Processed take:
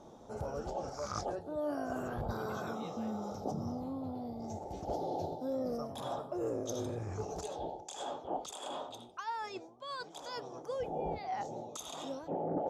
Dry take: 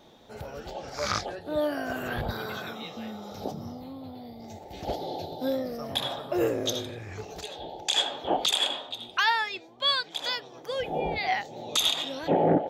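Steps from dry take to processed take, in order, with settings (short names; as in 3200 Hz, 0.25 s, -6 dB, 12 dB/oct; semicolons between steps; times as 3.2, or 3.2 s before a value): reverse; compressor 12:1, threshold -34 dBFS, peak gain reduction 16.5 dB; reverse; Bessel low-pass 8600 Hz, order 4; band shelf 2700 Hz -14.5 dB; gain +1.5 dB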